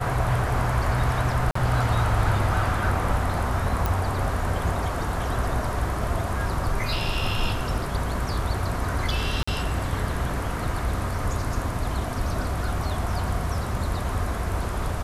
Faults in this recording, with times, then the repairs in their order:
0:01.51–0:01.55: drop-out 44 ms
0:03.86: click
0:09.43–0:09.47: drop-out 45 ms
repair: click removal
repair the gap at 0:01.51, 44 ms
repair the gap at 0:09.43, 45 ms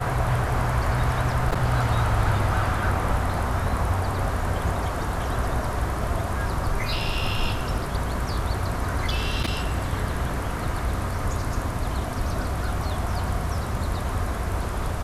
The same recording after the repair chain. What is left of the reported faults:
none of them is left

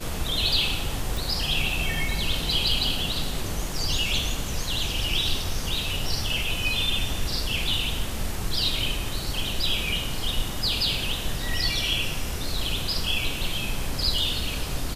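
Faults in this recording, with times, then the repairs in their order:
0:01.17: click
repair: click removal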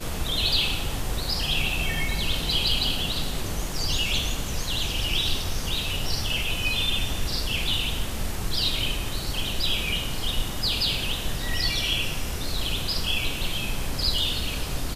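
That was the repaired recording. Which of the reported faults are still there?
none of them is left

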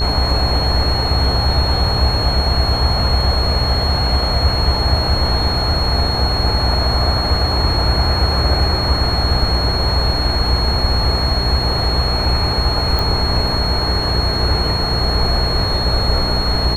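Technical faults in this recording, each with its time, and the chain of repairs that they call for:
mains buzz 60 Hz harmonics 31 −21 dBFS
whistle 4,300 Hz −20 dBFS
0:12.99: click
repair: click removal
hum removal 60 Hz, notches 31
notch filter 4,300 Hz, Q 30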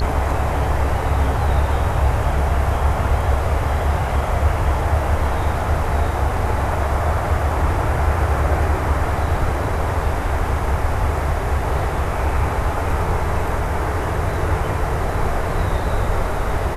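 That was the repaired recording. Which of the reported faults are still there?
none of them is left

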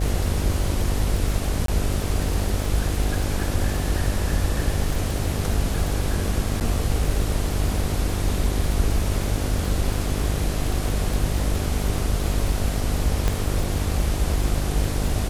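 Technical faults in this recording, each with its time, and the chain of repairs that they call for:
mains buzz 50 Hz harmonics 15 −26 dBFS
surface crackle 58 per second −26 dBFS
0:01.66–0:01.68: drop-out 23 ms
0:06.60–0:06.61: drop-out 8.5 ms
0:13.28: click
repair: click removal
hum removal 50 Hz, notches 15
repair the gap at 0:01.66, 23 ms
repair the gap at 0:06.60, 8.5 ms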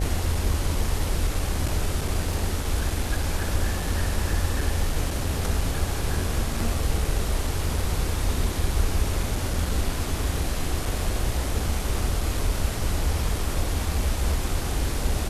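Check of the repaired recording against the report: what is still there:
0:13.28: click

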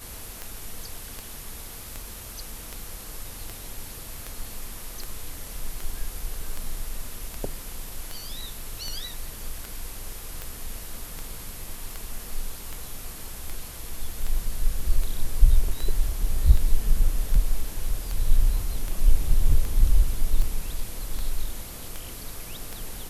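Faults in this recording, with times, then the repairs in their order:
scratch tick 78 rpm −18 dBFS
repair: click removal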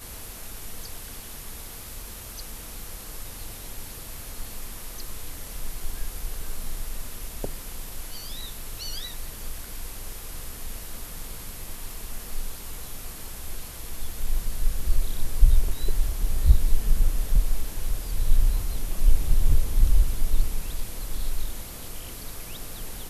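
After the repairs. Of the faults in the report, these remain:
none of them is left

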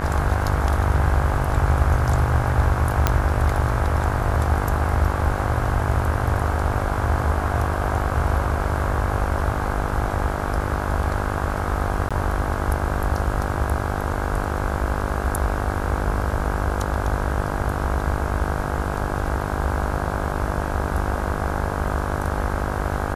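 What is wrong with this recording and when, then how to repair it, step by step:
mains buzz 50 Hz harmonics 33 −27 dBFS
0:03.07: click −3 dBFS
0:12.09–0:12.11: drop-out 16 ms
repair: click removal
hum removal 50 Hz, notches 33
repair the gap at 0:12.09, 16 ms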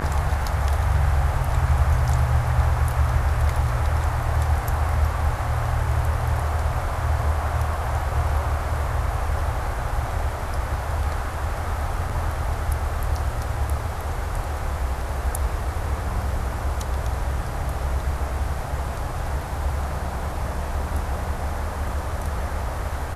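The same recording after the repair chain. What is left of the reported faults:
none of them is left

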